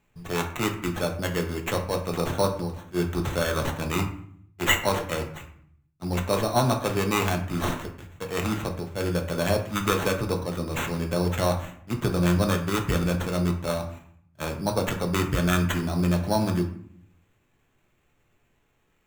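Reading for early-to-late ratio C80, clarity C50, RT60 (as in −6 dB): 12.5 dB, 9.5 dB, 0.60 s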